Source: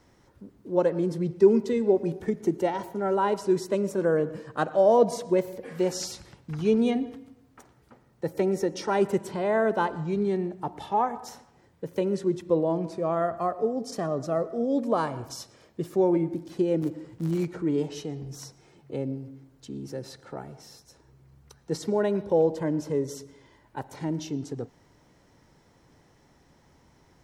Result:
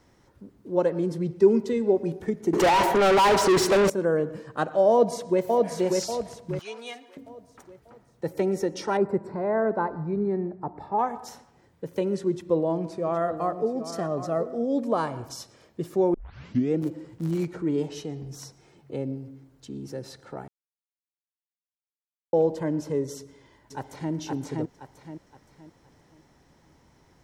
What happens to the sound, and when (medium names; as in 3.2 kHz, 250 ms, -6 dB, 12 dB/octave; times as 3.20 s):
2.53–3.90 s: overdrive pedal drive 34 dB, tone 3.6 kHz, clips at -12.5 dBFS
4.90–5.43 s: echo throw 590 ms, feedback 40%, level -2.5 dB
6.59–7.17 s: high-pass 1.1 kHz
8.97–10.99 s: boxcar filter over 14 samples
12.30–14.55 s: delay 769 ms -11.5 dB
16.14 s: tape start 0.64 s
20.48–22.33 s: mute
23.18–24.13 s: echo throw 520 ms, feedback 35%, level -1.5 dB